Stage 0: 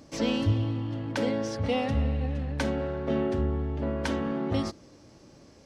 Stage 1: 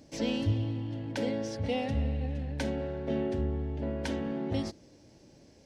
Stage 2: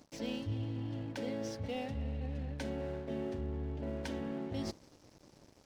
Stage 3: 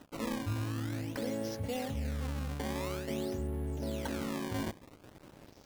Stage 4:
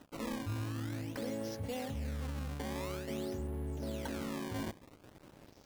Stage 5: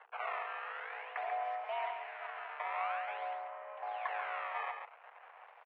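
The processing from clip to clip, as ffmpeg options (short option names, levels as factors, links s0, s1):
-af "equalizer=f=1200:w=3.4:g=-12,volume=0.668"
-af "areverse,acompressor=threshold=0.0112:ratio=4,areverse,aeval=exprs='sgn(val(0))*max(abs(val(0))-0.00119,0)':c=same,volume=1.41"
-filter_complex "[0:a]asplit=2[s0][s1];[s1]acompressor=threshold=0.00562:ratio=6,volume=1[s2];[s0][s2]amix=inputs=2:normalize=0,acrusher=samples=19:mix=1:aa=0.000001:lfo=1:lforange=30.4:lforate=0.49"
-af "volume=31.6,asoftclip=hard,volume=0.0316,volume=0.75"
-af "aecho=1:1:139:0.501,aeval=exprs='val(0)+0.00251*(sin(2*PI*60*n/s)+sin(2*PI*2*60*n/s)/2+sin(2*PI*3*60*n/s)/3+sin(2*PI*4*60*n/s)/4+sin(2*PI*5*60*n/s)/5)':c=same,highpass=f=560:t=q:w=0.5412,highpass=f=560:t=q:w=1.307,lowpass=f=2400:t=q:w=0.5176,lowpass=f=2400:t=q:w=0.7071,lowpass=f=2400:t=q:w=1.932,afreqshift=180,volume=2.24"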